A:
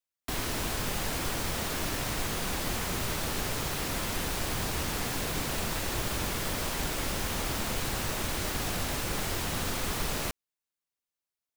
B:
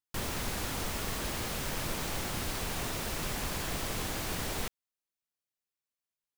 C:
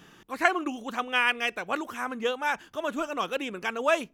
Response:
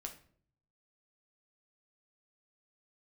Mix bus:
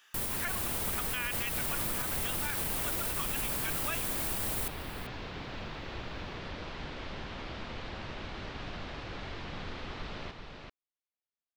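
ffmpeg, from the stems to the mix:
-filter_complex "[0:a]lowpass=frequency=4100:width=0.5412,lowpass=frequency=4100:width=1.3066,volume=-9dB,asplit=2[link_01][link_02];[link_02]volume=-5dB[link_03];[1:a]aexciter=amount=3.8:drive=2.6:freq=8500,volume=-2dB,asplit=2[link_04][link_05];[link_05]volume=-18dB[link_06];[2:a]highpass=1400,volume=-4.5dB[link_07];[link_03][link_06]amix=inputs=2:normalize=0,aecho=0:1:387:1[link_08];[link_01][link_04][link_07][link_08]amix=inputs=4:normalize=0,alimiter=limit=-23dB:level=0:latency=1:release=55"

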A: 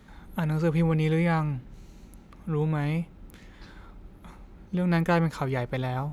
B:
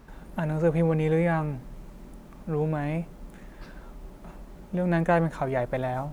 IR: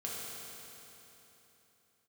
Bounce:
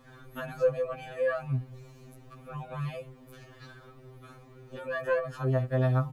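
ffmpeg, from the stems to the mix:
-filter_complex "[0:a]alimiter=limit=-20.5dB:level=0:latency=1:release=151,volume=0dB[link_01];[1:a]bass=frequency=250:gain=-3,treble=frequency=4000:gain=-7,adelay=0.7,volume=-4dB,asplit=2[link_02][link_03];[link_03]apad=whole_len=270231[link_04];[link_01][link_04]sidechaincompress=threshold=-31dB:ratio=8:attack=16:release=775[link_05];[link_05][link_02]amix=inputs=2:normalize=0,aecho=1:1:1.7:0.33,afftfilt=real='re*2.45*eq(mod(b,6),0)':imag='im*2.45*eq(mod(b,6),0)':win_size=2048:overlap=0.75"

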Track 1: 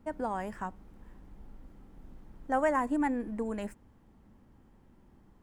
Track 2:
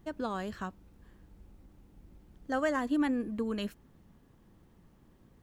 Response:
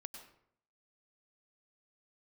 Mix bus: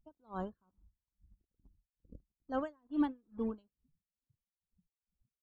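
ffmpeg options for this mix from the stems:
-filter_complex "[0:a]acompressor=threshold=-31dB:ratio=8,acrusher=bits=6:mix=0:aa=0.000001,volume=-4.5dB[link_01];[1:a]adelay=0.3,volume=-2.5dB[link_02];[link_01][link_02]amix=inputs=2:normalize=0,afftdn=noise_reduction=34:noise_floor=-46,equalizer=frequency=2000:width=2.9:gain=-5.5,aeval=exprs='val(0)*pow(10,-40*(0.5-0.5*cos(2*PI*2.3*n/s))/20)':channel_layout=same"

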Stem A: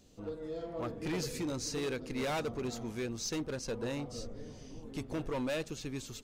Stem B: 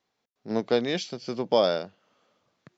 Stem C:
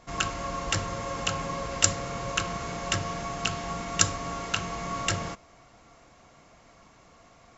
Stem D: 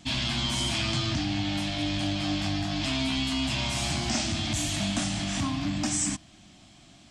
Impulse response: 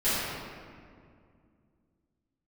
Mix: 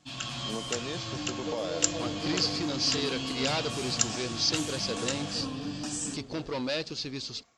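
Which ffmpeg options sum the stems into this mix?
-filter_complex "[0:a]lowpass=frequency=4700:width_type=q:width=6.4,adelay=1200,volume=-2.5dB[link_01];[1:a]volume=-10dB[link_02];[2:a]highshelf=frequency=2400:gain=9.5,volume=-17dB[link_03];[3:a]aecho=1:1:6.9:0.52,volume=-13dB[link_04];[link_02][link_04]amix=inputs=2:normalize=0,asuperstop=centerf=2100:order=4:qfactor=5.2,alimiter=level_in=4.5dB:limit=-24dB:level=0:latency=1:release=227,volume=-4.5dB,volume=0dB[link_05];[link_01][link_03][link_05]amix=inputs=3:normalize=0,highpass=frequency=100:poles=1,dynaudnorm=framelen=170:gausssize=3:maxgain=5dB"

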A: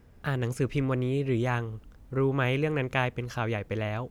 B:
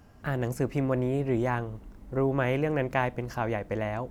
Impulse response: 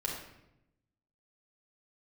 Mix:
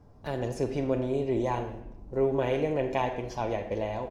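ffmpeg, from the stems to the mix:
-filter_complex "[0:a]agate=range=-8dB:threshold=-39dB:ratio=16:detection=peak,equalizer=frequency=5400:width=1:gain=12,aecho=1:1:7.4:0.68,volume=-10.5dB,asplit=2[link_01][link_02];[link_02]volume=-7dB[link_03];[1:a]lowpass=frequency=1100:width=0.5412,lowpass=frequency=1100:width=1.3066,volume=-1,volume=-3.5dB,asplit=3[link_04][link_05][link_06];[link_05]volume=-7dB[link_07];[link_06]apad=whole_len=181240[link_08];[link_01][link_08]sidechaincompress=threshold=-36dB:ratio=8:attack=16:release=1370[link_09];[2:a]atrim=start_sample=2205[link_10];[link_03][link_07]amix=inputs=2:normalize=0[link_11];[link_11][link_10]afir=irnorm=-1:irlink=0[link_12];[link_09][link_04][link_12]amix=inputs=3:normalize=0"

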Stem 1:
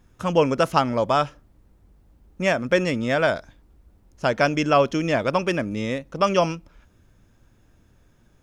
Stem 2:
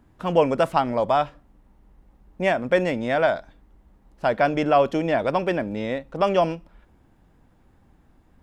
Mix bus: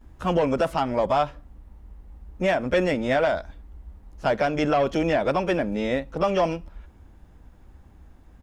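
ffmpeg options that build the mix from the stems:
ffmpeg -i stem1.wav -i stem2.wav -filter_complex "[0:a]lowshelf=frequency=100:width_type=q:width=3:gain=14,volume=-8.5dB[link_01];[1:a]asoftclip=type=tanh:threshold=-12.5dB,volume=-1,adelay=13,volume=2.5dB[link_02];[link_01][link_02]amix=inputs=2:normalize=0,alimiter=limit=-13dB:level=0:latency=1:release=244" out.wav

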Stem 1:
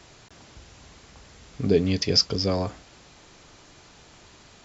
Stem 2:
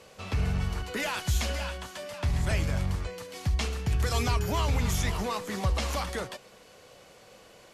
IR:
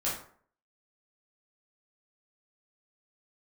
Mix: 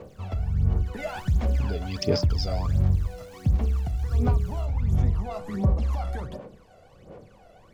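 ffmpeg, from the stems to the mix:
-filter_complex "[0:a]acompressor=threshold=-29dB:ratio=2,aeval=exprs='val(0)*gte(abs(val(0)),0.00447)':channel_layout=same,volume=-4dB,afade=type=in:start_time=0.91:duration=0.21:silence=0.281838[link_01];[1:a]tiltshelf=frequency=1300:gain=10,acompressor=threshold=-23dB:ratio=10,volume=-7.5dB,asplit=2[link_02][link_03];[link_03]volume=-15.5dB[link_04];[2:a]atrim=start_sample=2205[link_05];[link_04][link_05]afir=irnorm=-1:irlink=0[link_06];[link_01][link_02][link_06]amix=inputs=3:normalize=0,aphaser=in_gain=1:out_gain=1:delay=1.5:decay=0.74:speed=1.4:type=sinusoidal"

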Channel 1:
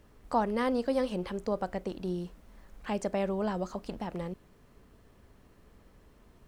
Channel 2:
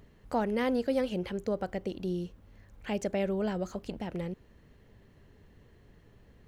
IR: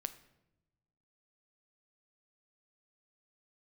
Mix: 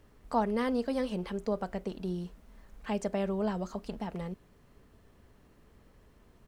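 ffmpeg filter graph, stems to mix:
-filter_complex "[0:a]volume=-2dB[link_01];[1:a]adelay=4.4,volume=-10.5dB[link_02];[link_01][link_02]amix=inputs=2:normalize=0"

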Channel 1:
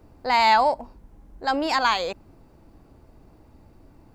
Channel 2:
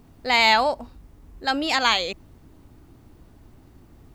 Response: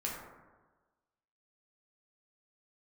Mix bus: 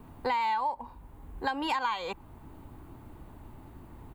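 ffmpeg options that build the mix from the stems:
-filter_complex "[0:a]alimiter=limit=-17.5dB:level=0:latency=1:release=231,highpass=frequency=940:width_type=q:width=3.6,volume=-3.5dB,asplit=2[link_01][link_02];[1:a]volume=-1,adelay=1.9,volume=1.5dB[link_03];[link_02]apad=whole_len=182857[link_04];[link_03][link_04]sidechaincompress=threshold=-29dB:ratio=8:attack=33:release=742[link_05];[link_01][link_05]amix=inputs=2:normalize=0,equalizer=frequency=5400:width=1.6:gain=-12.5,acompressor=threshold=-27dB:ratio=6"

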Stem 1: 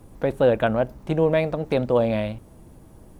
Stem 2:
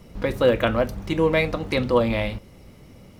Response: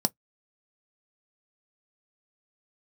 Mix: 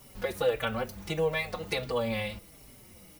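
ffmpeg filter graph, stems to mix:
-filter_complex "[0:a]aemphasis=mode=production:type=riaa,volume=-6.5dB[link_01];[1:a]highshelf=frequency=3900:gain=6,acompressor=threshold=-26dB:ratio=2,tiltshelf=frequency=970:gain=-3.5,volume=-3.5dB[link_02];[link_01][link_02]amix=inputs=2:normalize=0,asplit=2[link_03][link_04];[link_04]adelay=4.7,afreqshift=-1.5[link_05];[link_03][link_05]amix=inputs=2:normalize=1"

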